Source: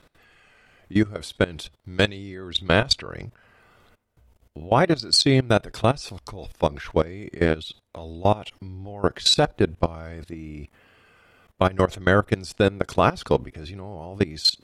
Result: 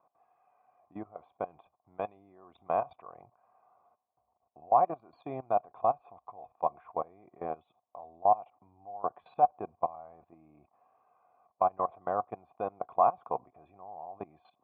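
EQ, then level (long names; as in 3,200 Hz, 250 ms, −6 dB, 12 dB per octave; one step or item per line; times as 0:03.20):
formant resonators in series a
high-pass filter 130 Hz 12 dB per octave
+4.0 dB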